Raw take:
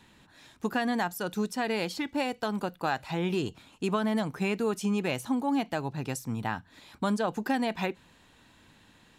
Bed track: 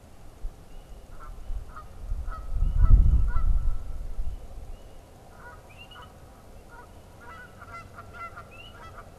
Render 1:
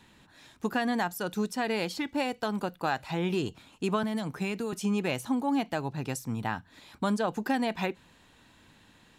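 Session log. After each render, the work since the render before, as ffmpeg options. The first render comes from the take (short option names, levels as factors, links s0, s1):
-filter_complex "[0:a]asettb=1/sr,asplit=3[s0][s1][s2];[s0]atrim=end=4.034[s3];[s1]atrim=start=4.03:end=4.73,asetpts=PTS-STARTPTS,afade=t=in:d=0.004:c=qsin,afade=t=out:st=0.696:d=0.004:c=qsin,acrossover=split=170|3000[s4][s5][s6];[s5]acompressor=threshold=0.0316:ratio=6:attack=3.2:release=140:knee=2.83:detection=peak[s7];[s4][s7][s6]amix=inputs=3:normalize=0[s8];[s2]atrim=start=4.726[s9];[s3][s8]acrossfade=d=0.004:c1=hsin:c2=qsin[s10];[s10][s9]acrossfade=d=0.004:c1=qsin:c2=hsin"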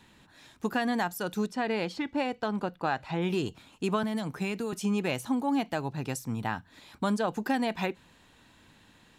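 -filter_complex "[0:a]asettb=1/sr,asplit=3[s0][s1][s2];[s0]atrim=end=1.464[s3];[s1]atrim=start=1.46:end=3.22,asetpts=PTS-STARTPTS,afade=t=in:d=0.004:c=qsin,afade=t=out:st=1.756:d=0.004:c=qsin,aemphasis=mode=reproduction:type=50fm[s4];[s2]atrim=start=3.216[s5];[s3][s4]acrossfade=d=0.004:c1=hsin:c2=qsin[s6];[s6][s5]acrossfade=d=0.004:c1=qsin:c2=hsin"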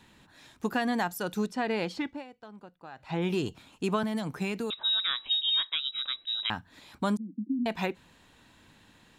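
-filter_complex "[0:a]asettb=1/sr,asplit=3[s0][s1][s2];[s0]atrim=end=4.704[s3];[s1]atrim=start=4.7:end=6.5,asetpts=PTS-STARTPTS,afade=t=in:d=0.004:c=qsin,afade=t=out:st=1.796:d=0.004:c=qsin,lowpass=f=3400:t=q:w=0.5098,lowpass=f=3400:t=q:w=0.6013,lowpass=f=3400:t=q:w=0.9,lowpass=f=3400:t=q:w=2.563,afreqshift=-4000[s4];[s2]atrim=start=6.496[s5];[s3][s4]acrossfade=d=0.004:c1=hsin:c2=qsin[s6];[s6][s5]acrossfade=d=0.004:c1=qsin:c2=hsin,asettb=1/sr,asplit=3[s7][s8][s9];[s7]atrim=end=7.174[s10];[s8]atrim=start=7.17:end=7.66,asetpts=PTS-STARTPTS,afade=t=in:d=0.004:c=qsin,afade=t=out:st=0.486:d=0.004:c=qsin,asuperpass=centerf=240:order=8:qfactor=2.1[s11];[s9]atrim=start=7.656[s12];[s10][s11]acrossfade=d=0.004:c1=hsin:c2=qsin[s13];[s13][s12]acrossfade=d=0.004:c1=qsin:c2=hsin,asplit=3[s14][s15][s16];[s14]atrim=end=2.28,asetpts=PTS-STARTPTS,afade=t=out:st=2.06:d=0.22:c=qua:silence=0.141254[s17];[s15]atrim=start=2.28:end=2.91,asetpts=PTS-STARTPTS,volume=0.141[s18];[s16]atrim=start=2.91,asetpts=PTS-STARTPTS,afade=t=in:d=0.22:c=qua:silence=0.141254[s19];[s17][s18][s19]concat=n=3:v=0:a=1"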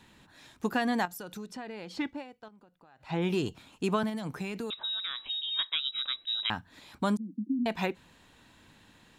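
-filter_complex "[0:a]asettb=1/sr,asplit=3[s0][s1][s2];[s0]atrim=end=1.054[s3];[s1]atrim=start=1.05:end=1.97,asetpts=PTS-STARTPTS,afade=t=in:d=0.004:c=qsin,afade=t=out:st=0.916:d=0.004:c=qsin,acompressor=threshold=0.0112:ratio=4:attack=3.2:release=140:knee=1:detection=peak[s4];[s2]atrim=start=1.966[s5];[s3][s4]acrossfade=d=0.004:c1=hsin:c2=qsin[s6];[s6][s5]acrossfade=d=0.004:c1=qsin:c2=hsin,asettb=1/sr,asplit=3[s7][s8][s9];[s7]atrim=end=2.484[s10];[s8]atrim=start=2.48:end=3.01,asetpts=PTS-STARTPTS,afade=t=in:d=0.004:c=qsin,afade=t=out:st=0.526:d=0.004:c=qsin,acompressor=threshold=0.00178:ratio=5:attack=3.2:release=140:knee=1:detection=peak[s11];[s9]atrim=start=3.006[s12];[s10][s11]acrossfade=d=0.004:c1=hsin:c2=qsin[s13];[s13][s12]acrossfade=d=0.004:c1=qsin:c2=hsin,asettb=1/sr,asplit=3[s14][s15][s16];[s14]atrim=end=4.094[s17];[s15]atrim=start=4.09:end=5.59,asetpts=PTS-STARTPTS,afade=t=in:d=0.004:c=qsin,afade=t=out:st=1.496:d=0.004:c=qsin,acompressor=threshold=0.0282:ratio=6:attack=3.2:release=140:knee=1:detection=peak[s18];[s16]atrim=start=5.586[s19];[s17][s18]acrossfade=d=0.004:c1=hsin:c2=qsin[s20];[s20][s19]acrossfade=d=0.004:c1=qsin:c2=hsin"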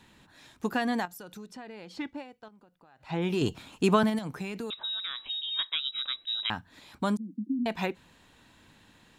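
-filter_complex "[0:a]asettb=1/sr,asplit=3[s0][s1][s2];[s0]atrim=end=3.414[s3];[s1]atrim=start=3.41:end=4.19,asetpts=PTS-STARTPTS,afade=t=in:d=0.004:c=qsin,afade=t=out:st=0.776:d=0.004:c=qsin,acontrast=51[s4];[s2]atrim=start=4.186[s5];[s3][s4]acrossfade=d=0.004:c1=hsin:c2=qsin[s6];[s6][s5]acrossfade=d=0.004:c1=qsin:c2=hsin,asplit=3[s7][s8][s9];[s7]atrim=end=1.002[s10];[s8]atrim=start=0.998:end=2.142,asetpts=PTS-STARTPTS,volume=0.708[s11];[s9]atrim=start=2.138[s12];[s10][s11]acrossfade=d=0.004:c1=hsin:c2=hsin[s13];[s13][s12]acrossfade=d=0.004:c1=hsin:c2=hsin"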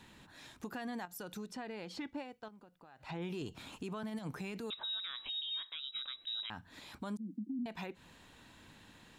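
-af "acompressor=threshold=0.02:ratio=3,alimiter=level_in=2.82:limit=0.0631:level=0:latency=1:release=118,volume=0.355"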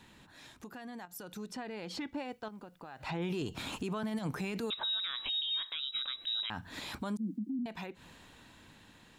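-af "alimiter=level_in=5.31:limit=0.0631:level=0:latency=1:release=131,volume=0.188,dynaudnorm=f=280:g=13:m=3.35"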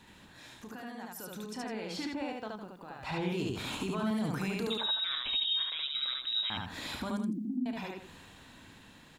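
-af "aecho=1:1:32.07|72.89|157.4:0.316|0.891|0.316"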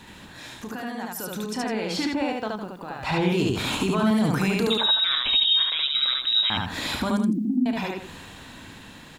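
-af "volume=3.55"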